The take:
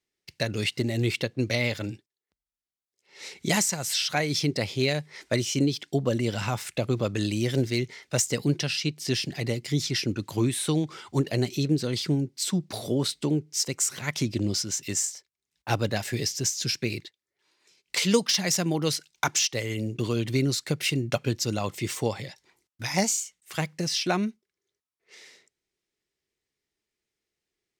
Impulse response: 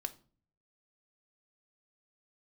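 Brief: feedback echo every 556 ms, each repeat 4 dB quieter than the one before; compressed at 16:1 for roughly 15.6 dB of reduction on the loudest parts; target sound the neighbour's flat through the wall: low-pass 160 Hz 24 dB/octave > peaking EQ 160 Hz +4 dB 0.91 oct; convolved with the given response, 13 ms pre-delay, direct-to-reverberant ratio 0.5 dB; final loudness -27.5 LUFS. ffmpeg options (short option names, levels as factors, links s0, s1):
-filter_complex "[0:a]acompressor=threshold=0.0251:ratio=16,aecho=1:1:556|1112|1668|2224|2780|3336|3892|4448|5004:0.631|0.398|0.25|0.158|0.0994|0.0626|0.0394|0.0249|0.0157,asplit=2[s0][s1];[1:a]atrim=start_sample=2205,adelay=13[s2];[s1][s2]afir=irnorm=-1:irlink=0,volume=1.06[s3];[s0][s3]amix=inputs=2:normalize=0,lowpass=f=160:w=0.5412,lowpass=f=160:w=1.3066,equalizer=f=160:t=o:w=0.91:g=4,volume=3.98"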